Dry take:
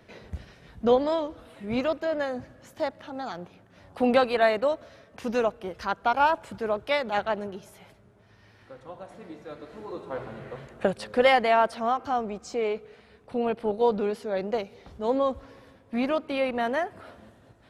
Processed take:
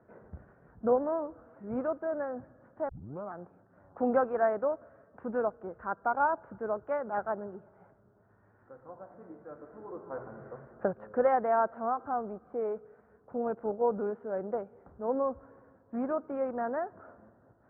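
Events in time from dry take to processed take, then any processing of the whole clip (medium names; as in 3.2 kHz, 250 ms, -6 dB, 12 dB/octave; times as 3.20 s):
2.89 s: tape start 0.43 s
whole clip: elliptic low-pass 1.5 kHz, stop band 80 dB; bass shelf 61 Hz -11 dB; trim -5 dB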